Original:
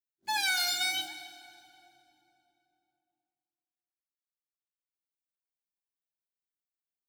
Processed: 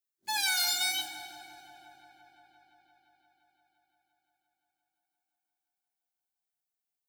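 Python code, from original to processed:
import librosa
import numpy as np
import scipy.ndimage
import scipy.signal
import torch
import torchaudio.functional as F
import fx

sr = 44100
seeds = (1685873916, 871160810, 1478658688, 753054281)

y = fx.high_shelf(x, sr, hz=4700.0, db=8.5)
y = fx.echo_wet_lowpass(y, sr, ms=173, feedback_pct=81, hz=970.0, wet_db=-8.5)
y = y * librosa.db_to_amplitude(-3.0)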